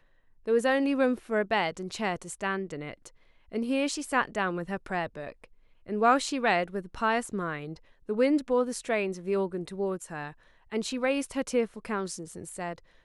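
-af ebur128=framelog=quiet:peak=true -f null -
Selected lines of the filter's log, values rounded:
Integrated loudness:
  I:         -29.5 LUFS
  Threshold: -40.0 LUFS
Loudness range:
  LRA:         4.1 LU
  Threshold: -50.1 LUFS
  LRA low:   -32.5 LUFS
  LRA high:  -28.3 LUFS
True peak:
  Peak:      -10.5 dBFS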